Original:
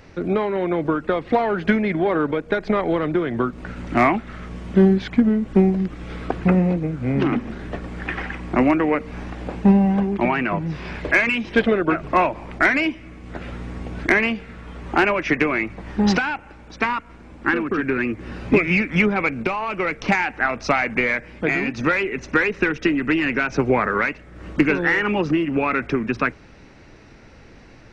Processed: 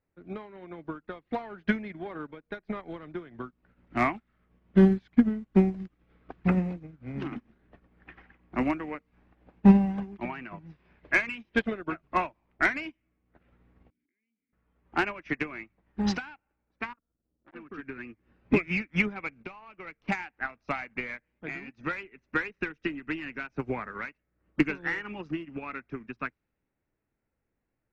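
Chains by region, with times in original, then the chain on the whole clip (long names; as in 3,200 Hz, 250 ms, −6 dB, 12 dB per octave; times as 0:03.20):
0:13.90–0:14.53: formant filter i + downward compressor 20 to 1, threshold −42 dBFS
0:16.93–0:17.55: low-pass filter 1,200 Hz 24 dB per octave + parametric band 940 Hz −13.5 dB 0.61 octaves + saturating transformer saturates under 1,200 Hz
whole clip: low-pass that shuts in the quiet parts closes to 2,000 Hz, open at −13.5 dBFS; dynamic equaliser 500 Hz, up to −5 dB, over −35 dBFS, Q 1.4; expander for the loud parts 2.5 to 1, over −35 dBFS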